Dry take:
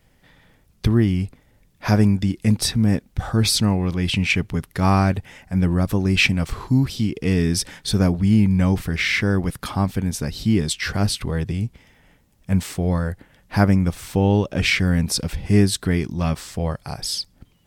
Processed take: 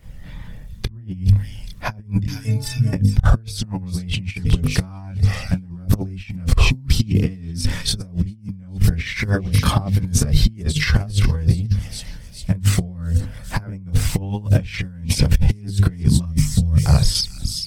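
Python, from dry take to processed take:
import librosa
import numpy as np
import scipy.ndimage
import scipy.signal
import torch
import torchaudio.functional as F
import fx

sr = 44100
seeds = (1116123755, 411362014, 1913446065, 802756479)

y = fx.hum_notches(x, sr, base_hz=50, count=10)
y = fx.stiff_resonator(y, sr, f0_hz=130.0, decay_s=0.7, stiffness=0.03, at=(2.24, 2.93))
y = fx.spec_box(y, sr, start_s=16.22, length_s=0.58, low_hz=240.0, high_hz=5100.0, gain_db=-14)
y = fx.echo_wet_highpass(y, sr, ms=415, feedback_pct=49, hz=3700.0, wet_db=-8.5)
y = fx.chorus_voices(y, sr, voices=6, hz=0.39, base_ms=28, depth_ms=1.1, mix_pct=60)
y = fx.highpass(y, sr, hz=68.0, slope=12, at=(9.47, 10.06))
y = fx.over_compress(y, sr, threshold_db=-29.0, ratio=-0.5)
y = fx.low_shelf(y, sr, hz=210.0, db=11.5)
y = fx.band_squash(y, sr, depth_pct=70, at=(16.38, 17.15))
y = y * 10.0 ** (3.0 / 20.0)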